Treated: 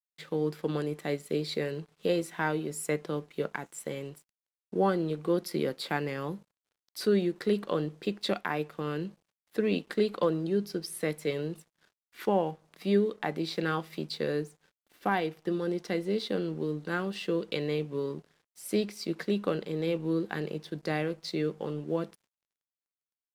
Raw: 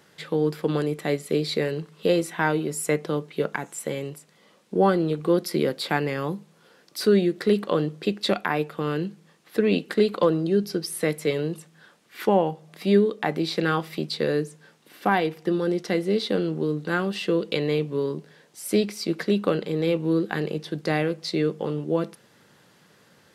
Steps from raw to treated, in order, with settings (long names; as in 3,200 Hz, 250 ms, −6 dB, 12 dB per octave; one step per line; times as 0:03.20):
downward expander −52 dBFS
dead-zone distortion −51.5 dBFS
level −6.5 dB